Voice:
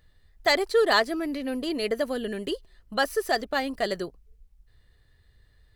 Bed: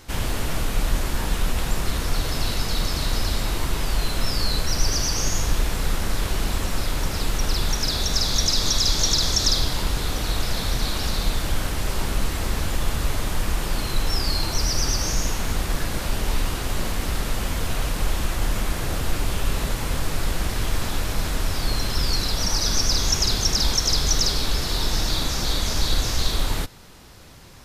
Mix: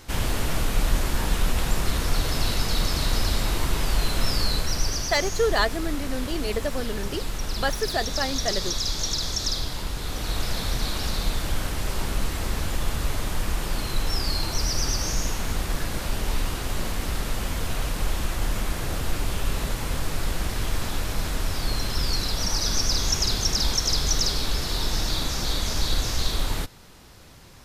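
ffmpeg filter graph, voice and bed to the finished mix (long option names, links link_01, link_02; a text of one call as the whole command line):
ffmpeg -i stem1.wav -i stem2.wav -filter_complex "[0:a]adelay=4650,volume=-1.5dB[link_01];[1:a]volume=4dB,afade=type=out:start_time=4.31:duration=0.82:silence=0.473151,afade=type=in:start_time=9.97:duration=0.45:silence=0.630957[link_02];[link_01][link_02]amix=inputs=2:normalize=0" out.wav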